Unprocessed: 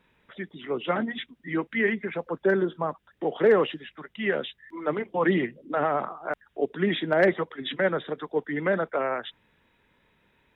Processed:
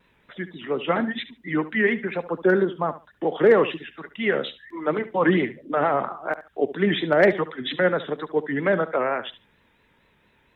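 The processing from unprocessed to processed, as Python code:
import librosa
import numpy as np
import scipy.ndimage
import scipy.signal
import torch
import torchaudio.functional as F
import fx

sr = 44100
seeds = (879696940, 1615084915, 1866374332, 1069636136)

y = fx.vibrato(x, sr, rate_hz=4.3, depth_cents=87.0)
y = fx.echo_feedback(y, sr, ms=71, feedback_pct=18, wet_db=-15.0)
y = y * 10.0 ** (3.5 / 20.0)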